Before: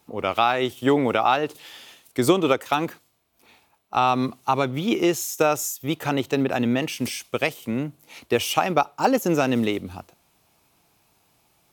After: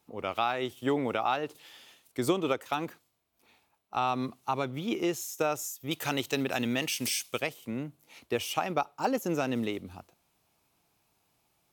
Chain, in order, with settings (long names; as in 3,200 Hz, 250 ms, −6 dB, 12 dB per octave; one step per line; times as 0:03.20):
0:05.91–0:07.40: high-shelf EQ 2,100 Hz +12 dB
level −9 dB